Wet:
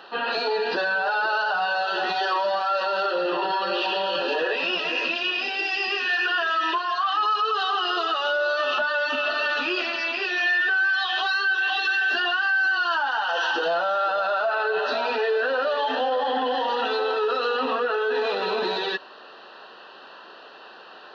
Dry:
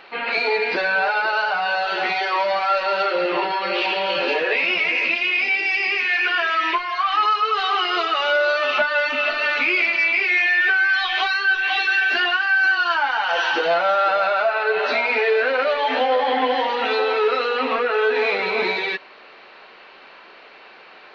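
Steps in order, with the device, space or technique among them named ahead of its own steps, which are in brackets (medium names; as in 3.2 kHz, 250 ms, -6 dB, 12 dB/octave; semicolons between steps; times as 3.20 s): PA system with an anti-feedback notch (high-pass 150 Hz 12 dB/octave; Butterworth band-stop 2.2 kHz, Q 2.2; peak limiter -18 dBFS, peak gain reduction 8.5 dB); peaking EQ 2.2 kHz +4 dB 0.51 oct; trim +1 dB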